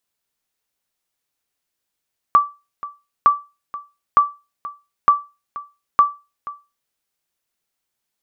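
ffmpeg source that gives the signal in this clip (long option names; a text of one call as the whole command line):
ffmpeg -f lavfi -i "aevalsrc='0.631*(sin(2*PI*1160*mod(t,0.91))*exp(-6.91*mod(t,0.91)/0.27)+0.126*sin(2*PI*1160*max(mod(t,0.91)-0.48,0))*exp(-6.91*max(mod(t,0.91)-0.48,0)/0.27))':duration=4.55:sample_rate=44100" out.wav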